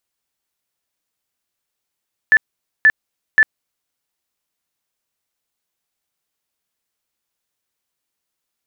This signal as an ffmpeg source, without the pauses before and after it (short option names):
-f lavfi -i "aevalsrc='0.473*sin(2*PI*1750*mod(t,0.53))*lt(mod(t,0.53),86/1750)':d=1.59:s=44100"